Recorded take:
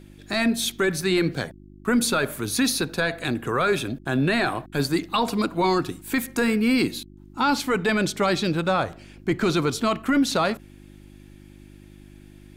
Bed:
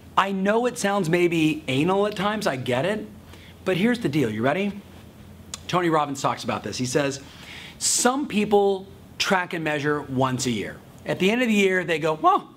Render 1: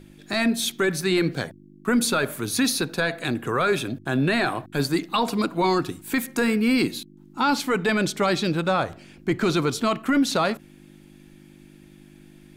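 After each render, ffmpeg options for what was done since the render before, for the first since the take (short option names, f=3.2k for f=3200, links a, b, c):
-af "bandreject=f=50:t=h:w=4,bandreject=f=100:t=h:w=4"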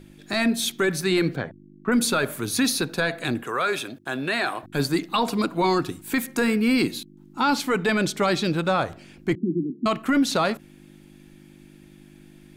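-filter_complex "[0:a]asettb=1/sr,asplit=3[a][b][c];[a]atrim=end=1.364[d];[b]atrim=start=1.36:end=1.92,asetpts=PTS-STARTPTS,afade=t=in:d=0.004:c=qsin,afade=t=out:st=0.556:d=0.004:c=qsin,lowpass=2.2k[e];[c]atrim=start=1.916[f];[d][e]acrossfade=d=0.004:c1=hsin:c2=qsin[g];[g][f]acrossfade=d=0.004:c1=qsin:c2=hsin,asettb=1/sr,asplit=3[h][i][j];[h]atrim=end=3.434[k];[i]atrim=start=3.43:end=4.63,asetpts=PTS-STARTPTS,afade=t=in:d=0.004:c=qsin,afade=t=out:st=1.196:d=0.004:c=qsin,highpass=f=580:p=1[l];[j]atrim=start=4.626[m];[k][l]acrossfade=d=0.004:c1=hsin:c2=qsin[n];[n][m]acrossfade=d=0.004:c1=qsin:c2=hsin,asettb=1/sr,asplit=3[o][p][q];[o]atrim=end=9.354[r];[p]atrim=start=9.35:end=9.86,asetpts=PTS-STARTPTS,afade=t=in:d=0.004:c=qsin,afade=t=out:st=0.506:d=0.004:c=qsin,asuperpass=centerf=240:order=12:qfactor=1.2[s];[q]atrim=start=9.856[t];[r][s]acrossfade=d=0.004:c1=hsin:c2=qsin[u];[u][t]acrossfade=d=0.004:c1=qsin:c2=hsin"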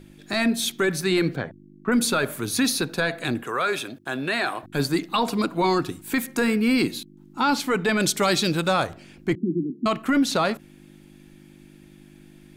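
-filter_complex "[0:a]asettb=1/sr,asplit=3[a][b][c];[a]atrim=end=8.004[d];[b]atrim=start=8:end=8.87,asetpts=PTS-STARTPTS,afade=t=in:d=0.004:c=qsin,afade=t=out:st=0.866:d=0.004:c=qsin,highshelf=f=4.4k:g=11.5[e];[c]atrim=start=8.866[f];[d][e]acrossfade=d=0.004:c1=hsin:c2=qsin[g];[g][f]acrossfade=d=0.004:c1=qsin:c2=hsin"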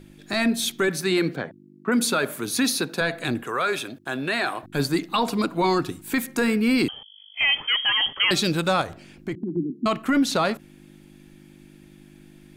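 -filter_complex "[0:a]asettb=1/sr,asplit=3[a][b][c];[a]atrim=end=0.884[d];[b]atrim=start=0.88:end=3.01,asetpts=PTS-STARTPTS,afade=t=in:d=0.004:c=qsin,afade=t=out:st=2.126:d=0.004:c=qsin,highpass=160[e];[c]atrim=start=3.006[f];[d][e]acrossfade=d=0.004:c1=hsin:c2=qsin[g];[g][f]acrossfade=d=0.004:c1=qsin:c2=hsin,asettb=1/sr,asplit=3[h][i][j];[h]atrim=end=6.884[k];[i]atrim=start=6.88:end=8.31,asetpts=PTS-STARTPTS,afade=t=in:d=0.004:c=qsin,afade=t=out:st=1.426:d=0.004:c=qsin,lowpass=f=2.9k:t=q:w=0.5098,lowpass=f=2.9k:t=q:w=0.6013,lowpass=f=2.9k:t=q:w=0.9,lowpass=f=2.9k:t=q:w=2.563,afreqshift=-3400[l];[j]atrim=start=8.306[m];[k][l]acrossfade=d=0.004:c1=hsin:c2=qsin[n];[n][m]acrossfade=d=0.004:c1=qsin:c2=hsin,asettb=1/sr,asplit=3[o][p][q];[o]atrim=end=8.814[r];[p]atrim=start=8.81:end=9.57,asetpts=PTS-STARTPTS,afade=t=in:d=0.004:c=qsin,afade=t=out:st=0.756:d=0.004:c=qsin,acompressor=threshold=-25dB:ratio=4:attack=3.2:release=140:knee=1:detection=peak[s];[q]atrim=start=9.566[t];[r][s]acrossfade=d=0.004:c1=hsin:c2=qsin[u];[u][t]acrossfade=d=0.004:c1=qsin:c2=hsin"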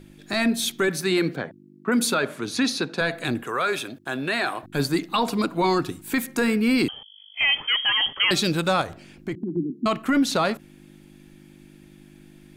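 -filter_complex "[0:a]asettb=1/sr,asplit=3[a][b][c];[a]atrim=end=2.144[d];[b]atrim=start=2.14:end=3,asetpts=PTS-STARTPTS,afade=t=in:d=0.004:c=qsin,afade=t=out:st=0.856:d=0.004:c=qsin,lowpass=5.9k[e];[c]atrim=start=2.996[f];[d][e]acrossfade=d=0.004:c1=hsin:c2=qsin[g];[g][f]acrossfade=d=0.004:c1=qsin:c2=hsin"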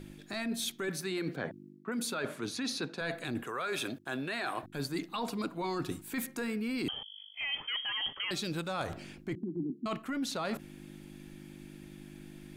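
-af "alimiter=limit=-16dB:level=0:latency=1:release=139,areverse,acompressor=threshold=-33dB:ratio=6,areverse"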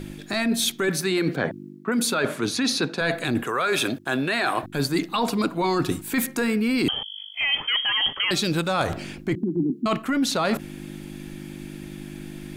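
-af "volume=12dB"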